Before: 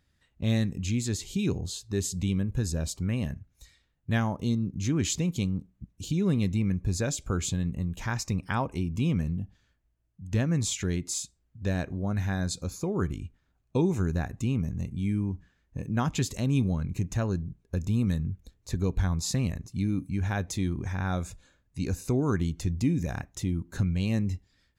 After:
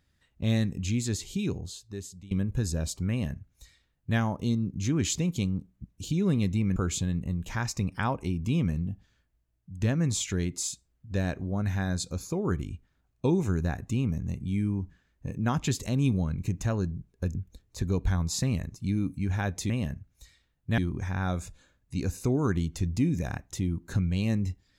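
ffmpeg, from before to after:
ffmpeg -i in.wav -filter_complex "[0:a]asplit=6[link_01][link_02][link_03][link_04][link_05][link_06];[link_01]atrim=end=2.31,asetpts=PTS-STARTPTS,afade=type=out:start_time=1.16:duration=1.15:silence=0.0749894[link_07];[link_02]atrim=start=2.31:end=6.762,asetpts=PTS-STARTPTS,afade=type=in:duration=0.004:curve=hsin:silence=0.0749894[link_08];[link_03]atrim=start=7.268:end=17.862[link_09];[link_04]atrim=start=18.268:end=20.622[link_10];[link_05]atrim=start=3.098:end=4.182[link_11];[link_06]atrim=start=20.618[link_12];[link_07][link_08]concat=n=2:v=0:a=1[link_13];[link_13][link_09]acrossfade=duration=0.004:curve1=hsin:curve2=hsin[link_14];[link_14][link_10]acrossfade=duration=0.004:curve1=hsin:curve2=hsin[link_15];[link_15][link_11]acrossfade=duration=0.004:curve1=hsin:curve2=hsin[link_16];[link_16][link_12]acrossfade=duration=0.004:curve1=hsin:curve2=hsin" out.wav

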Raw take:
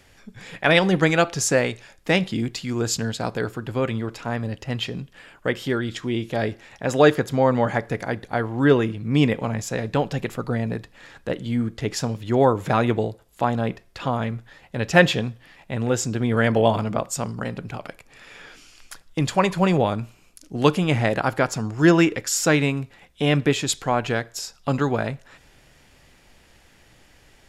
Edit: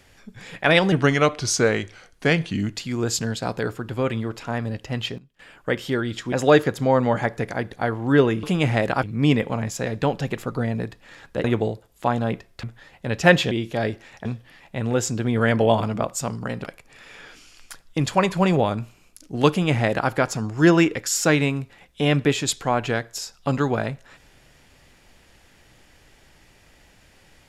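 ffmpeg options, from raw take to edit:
ffmpeg -i in.wav -filter_complex "[0:a]asplit=13[link_01][link_02][link_03][link_04][link_05][link_06][link_07][link_08][link_09][link_10][link_11][link_12][link_13];[link_01]atrim=end=0.924[link_14];[link_02]atrim=start=0.92:end=2.55,asetpts=PTS-STARTPTS,asetrate=38808,aresample=44100,atrim=end_sample=81685,asetpts=PTS-STARTPTS[link_15];[link_03]atrim=start=2.546:end=4.96,asetpts=PTS-STARTPTS,afade=type=out:start_time=2.114:duration=0.3:curve=log:silence=0.11885[link_16];[link_04]atrim=start=4.96:end=5.17,asetpts=PTS-STARTPTS,volume=-18.5dB[link_17];[link_05]atrim=start=5.17:end=6.102,asetpts=PTS-STARTPTS,afade=type=in:duration=0.3:curve=log:silence=0.11885[link_18];[link_06]atrim=start=6.838:end=8.952[link_19];[link_07]atrim=start=20.708:end=21.312[link_20];[link_08]atrim=start=8.948:end=11.362[link_21];[link_09]atrim=start=12.808:end=14.002[link_22];[link_10]atrim=start=14.328:end=15.212[link_23];[link_11]atrim=start=6.098:end=6.842[link_24];[link_12]atrim=start=15.208:end=17.602[link_25];[link_13]atrim=start=17.848[link_26];[link_14][link_15]acrossfade=duration=0.004:curve1=hsin:curve2=hsin[link_27];[link_16][link_17][link_18]concat=n=3:v=0:a=1[link_28];[link_27][link_28]acrossfade=duration=0.004:curve1=hsin:curve2=hsin[link_29];[link_29][link_19]acrossfade=duration=0.004:curve1=hsin:curve2=hsin[link_30];[link_30][link_20]acrossfade=duration=0.004:curve1=hsin:curve2=hsin[link_31];[link_31][link_21]acrossfade=duration=0.004:curve1=hsin:curve2=hsin[link_32];[link_32][link_22]acrossfade=duration=0.004:curve1=hsin:curve2=hsin[link_33];[link_33][link_23]acrossfade=duration=0.004:curve1=hsin:curve2=hsin[link_34];[link_34][link_24]acrossfade=duration=0.004:curve1=hsin:curve2=hsin[link_35];[link_35][link_25]acrossfade=duration=0.004:curve1=hsin:curve2=hsin[link_36];[link_36][link_26]acrossfade=duration=0.004:curve1=hsin:curve2=hsin" out.wav

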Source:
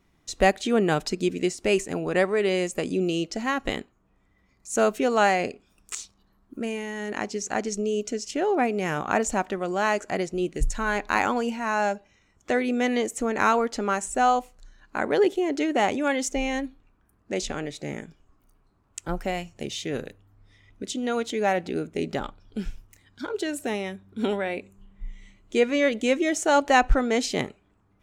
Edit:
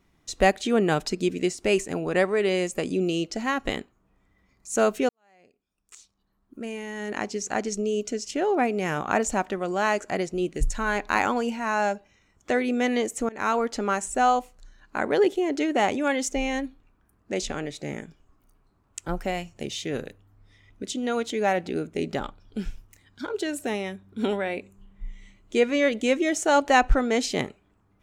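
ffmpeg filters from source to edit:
ffmpeg -i in.wav -filter_complex "[0:a]asplit=3[link_01][link_02][link_03];[link_01]atrim=end=5.09,asetpts=PTS-STARTPTS,afade=type=out:start_time=5.086:duration=0.004:curve=hsin[link_04];[link_02]atrim=start=5.09:end=13.29,asetpts=PTS-STARTPTS,afade=type=in:duration=2.01:curve=qua,afade=type=out:start_time=8.196:duration=0.004:curve=hsin:silence=0.0749894[link_05];[link_03]atrim=start=13.29,asetpts=PTS-STARTPTS,afade=type=in:duration=0.47:curve=qsin:silence=0.0749894[link_06];[link_04][link_05][link_06]concat=n=3:v=0:a=1" out.wav

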